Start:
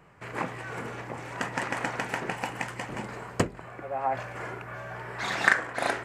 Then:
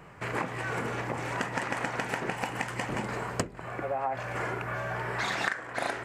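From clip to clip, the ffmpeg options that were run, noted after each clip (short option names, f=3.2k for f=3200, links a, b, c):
-af "acompressor=threshold=-35dB:ratio=5,volume=6.5dB"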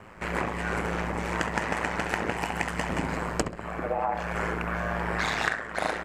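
-filter_complex "[0:a]asplit=2[a][b];[b]adelay=67,lowpass=f=2.7k:p=1,volume=-6.5dB,asplit=2[c][d];[d]adelay=67,lowpass=f=2.7k:p=1,volume=0.37,asplit=2[e][f];[f]adelay=67,lowpass=f=2.7k:p=1,volume=0.37,asplit=2[g][h];[h]adelay=67,lowpass=f=2.7k:p=1,volume=0.37[i];[a][c][e][g][i]amix=inputs=5:normalize=0,aeval=exprs='val(0)*sin(2*PI*55*n/s)':c=same,volume=5dB"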